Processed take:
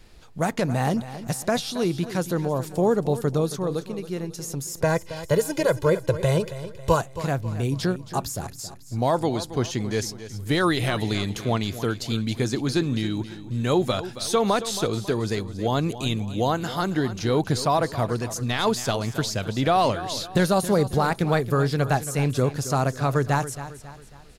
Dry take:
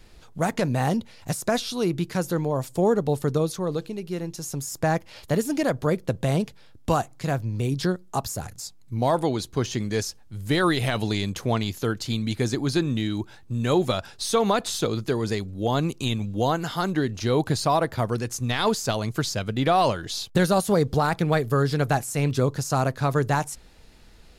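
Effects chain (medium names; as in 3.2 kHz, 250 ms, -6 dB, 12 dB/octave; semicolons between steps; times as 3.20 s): 4.78–7.01 s: comb 2 ms, depth 90%; feedback delay 273 ms, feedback 43%, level -13.5 dB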